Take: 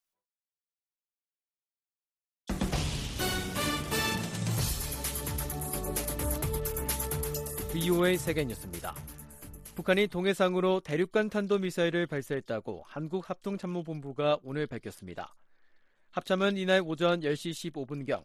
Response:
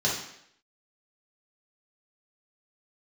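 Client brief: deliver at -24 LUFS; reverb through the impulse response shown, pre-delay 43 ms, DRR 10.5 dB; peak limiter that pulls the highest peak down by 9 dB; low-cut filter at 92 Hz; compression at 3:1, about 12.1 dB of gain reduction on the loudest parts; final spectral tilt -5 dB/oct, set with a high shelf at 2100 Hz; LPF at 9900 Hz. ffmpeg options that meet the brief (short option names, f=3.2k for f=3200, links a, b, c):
-filter_complex "[0:a]highpass=92,lowpass=9.9k,highshelf=f=2.1k:g=-3.5,acompressor=threshold=-39dB:ratio=3,alimiter=level_in=7.5dB:limit=-24dB:level=0:latency=1,volume=-7.5dB,asplit=2[a][b];[1:a]atrim=start_sample=2205,adelay=43[c];[b][c]afir=irnorm=-1:irlink=0,volume=-21.5dB[d];[a][d]amix=inputs=2:normalize=0,volume=18dB"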